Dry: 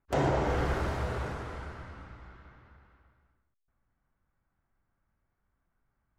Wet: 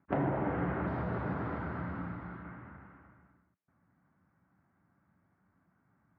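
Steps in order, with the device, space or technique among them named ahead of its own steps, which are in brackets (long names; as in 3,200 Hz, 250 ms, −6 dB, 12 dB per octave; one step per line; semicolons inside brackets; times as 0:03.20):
bass amplifier (downward compressor 4 to 1, threshold −40 dBFS, peak gain reduction 14 dB; loudspeaker in its box 86–2,100 Hz, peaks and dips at 180 Hz +9 dB, 280 Hz +6 dB, 460 Hz −4 dB)
0:00.87–0:02.43: high shelf with overshoot 3,500 Hz +8 dB, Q 1.5
level +8 dB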